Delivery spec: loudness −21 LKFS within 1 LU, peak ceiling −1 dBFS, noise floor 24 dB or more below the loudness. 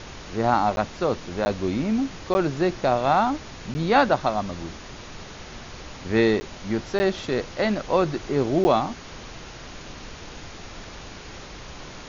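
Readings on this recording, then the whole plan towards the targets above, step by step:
number of dropouts 7; longest dropout 10 ms; background noise floor −41 dBFS; target noise floor −48 dBFS; integrated loudness −24.0 LKFS; sample peak −6.0 dBFS; target loudness −21.0 LKFS
→ repair the gap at 0:00.76/0:01.45/0:02.34/0:03.74/0:06.40/0:06.99/0:08.64, 10 ms
noise reduction from a noise print 7 dB
level +3 dB

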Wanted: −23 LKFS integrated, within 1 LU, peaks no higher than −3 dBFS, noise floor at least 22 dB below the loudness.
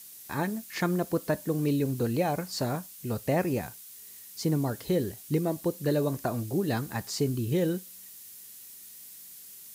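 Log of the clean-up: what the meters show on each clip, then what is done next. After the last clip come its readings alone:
background noise floor −48 dBFS; target noise floor −52 dBFS; integrated loudness −30.0 LKFS; sample peak −14.5 dBFS; target loudness −23.0 LKFS
→ noise reduction from a noise print 6 dB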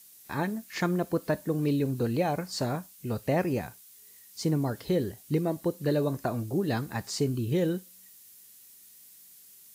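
background noise floor −54 dBFS; integrated loudness −30.0 LKFS; sample peak −14.5 dBFS; target loudness −23.0 LKFS
→ level +7 dB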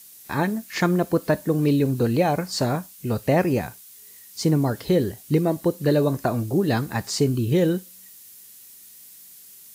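integrated loudness −23.0 LKFS; sample peak −7.5 dBFS; background noise floor −47 dBFS

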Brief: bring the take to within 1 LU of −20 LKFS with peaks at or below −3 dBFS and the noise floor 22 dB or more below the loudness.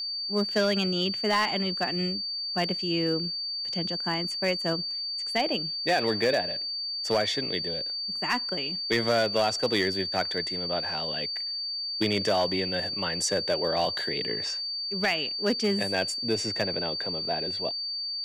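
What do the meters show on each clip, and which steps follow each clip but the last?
share of clipped samples 0.5%; peaks flattened at −17.5 dBFS; interfering tone 4,600 Hz; level of the tone −30 dBFS; integrated loudness −27.0 LKFS; sample peak −17.5 dBFS; target loudness −20.0 LKFS
→ clipped peaks rebuilt −17.5 dBFS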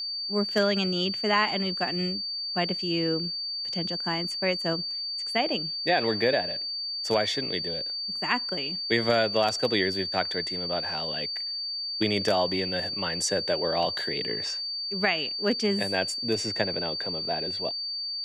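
share of clipped samples 0.0%; interfering tone 4,600 Hz; level of the tone −30 dBFS
→ notch filter 4,600 Hz, Q 30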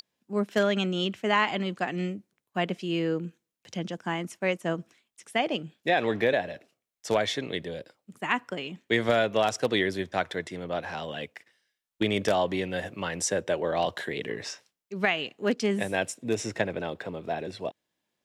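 interfering tone none found; integrated loudness −29.0 LKFS; sample peak −8.0 dBFS; target loudness −20.0 LKFS
→ level +9 dB
brickwall limiter −3 dBFS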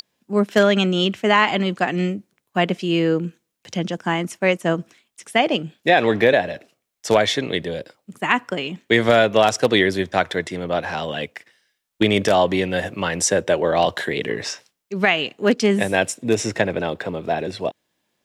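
integrated loudness −20.5 LKFS; sample peak −3.0 dBFS; background noise floor −77 dBFS

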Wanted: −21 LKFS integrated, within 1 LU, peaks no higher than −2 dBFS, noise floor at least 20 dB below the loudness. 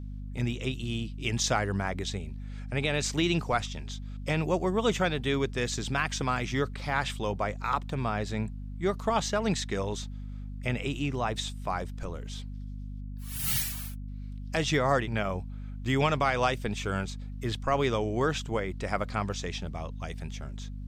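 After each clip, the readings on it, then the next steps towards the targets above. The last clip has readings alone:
mains hum 50 Hz; hum harmonics up to 250 Hz; level of the hum −36 dBFS; integrated loudness −30.5 LKFS; sample peak −13.0 dBFS; target loudness −21.0 LKFS
→ hum removal 50 Hz, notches 5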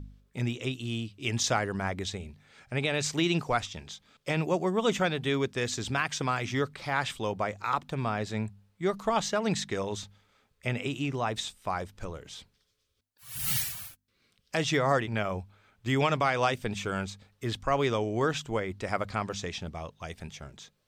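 mains hum none found; integrated loudness −30.5 LKFS; sample peak −14.0 dBFS; target loudness −21.0 LKFS
→ level +9.5 dB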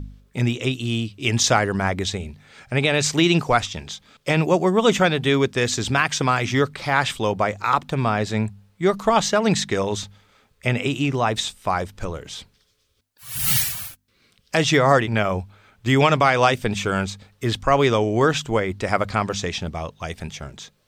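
integrated loudness −21.0 LKFS; sample peak −4.5 dBFS; background noise floor −64 dBFS

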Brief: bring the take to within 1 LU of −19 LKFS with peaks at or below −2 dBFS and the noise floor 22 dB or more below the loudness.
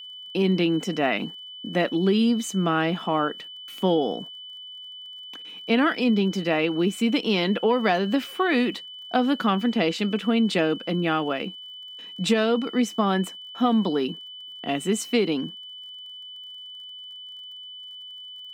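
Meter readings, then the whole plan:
crackle rate 36 per second; interfering tone 3,000 Hz; level of the tone −38 dBFS; integrated loudness −24.0 LKFS; sample peak −7.5 dBFS; target loudness −19.0 LKFS
→ click removal
notch filter 3,000 Hz, Q 30
level +5 dB

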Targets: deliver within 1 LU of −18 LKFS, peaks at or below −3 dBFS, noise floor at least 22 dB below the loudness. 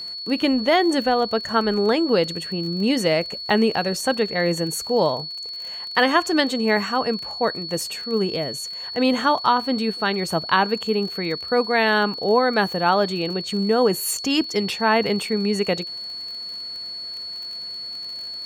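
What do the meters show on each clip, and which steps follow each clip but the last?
crackle rate 31 per second; interfering tone 4,400 Hz; level of the tone −30 dBFS; integrated loudness −22.0 LKFS; sample peak −3.5 dBFS; target loudness −18.0 LKFS
→ click removal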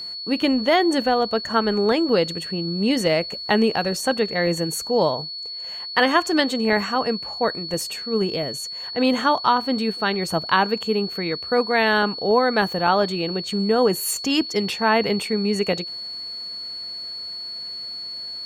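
crackle rate 0.49 per second; interfering tone 4,400 Hz; level of the tone −30 dBFS
→ notch filter 4,400 Hz, Q 30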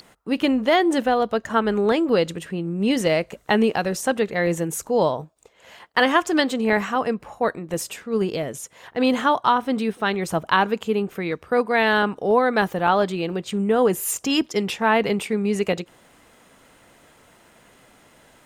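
interfering tone none found; integrated loudness −22.0 LKFS; sample peak −4.0 dBFS; target loudness −18.0 LKFS
→ level +4 dB
brickwall limiter −3 dBFS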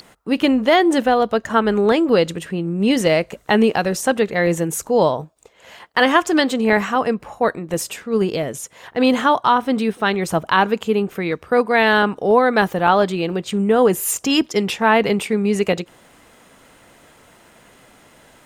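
integrated loudness −18.0 LKFS; sample peak −3.0 dBFS; background noise floor −51 dBFS

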